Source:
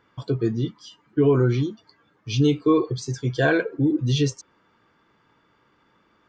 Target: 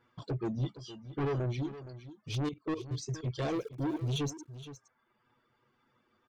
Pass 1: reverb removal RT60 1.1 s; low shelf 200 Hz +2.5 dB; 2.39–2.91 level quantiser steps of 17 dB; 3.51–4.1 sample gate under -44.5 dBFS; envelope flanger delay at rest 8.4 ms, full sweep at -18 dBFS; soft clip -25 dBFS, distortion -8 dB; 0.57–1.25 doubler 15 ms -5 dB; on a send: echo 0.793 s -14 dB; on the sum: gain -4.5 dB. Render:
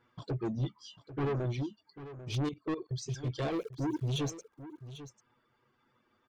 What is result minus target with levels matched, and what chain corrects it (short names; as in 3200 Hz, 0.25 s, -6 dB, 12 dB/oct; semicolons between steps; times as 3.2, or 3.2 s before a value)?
echo 0.326 s late
reverb removal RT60 1.1 s; low shelf 200 Hz +2.5 dB; 2.39–2.91 level quantiser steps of 17 dB; 3.51–4.1 sample gate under -44.5 dBFS; envelope flanger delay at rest 8.4 ms, full sweep at -18 dBFS; soft clip -25 dBFS, distortion -8 dB; 0.57–1.25 doubler 15 ms -5 dB; on a send: echo 0.467 s -14 dB; on the sum: gain -4.5 dB